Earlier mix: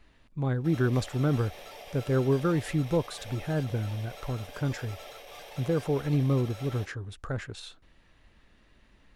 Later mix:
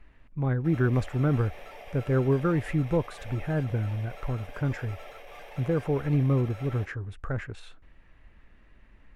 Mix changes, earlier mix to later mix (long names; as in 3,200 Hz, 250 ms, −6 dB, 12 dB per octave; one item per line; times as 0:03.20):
speech: add low-shelf EQ 73 Hz +8.5 dB
master: add high shelf with overshoot 3,000 Hz −8 dB, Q 1.5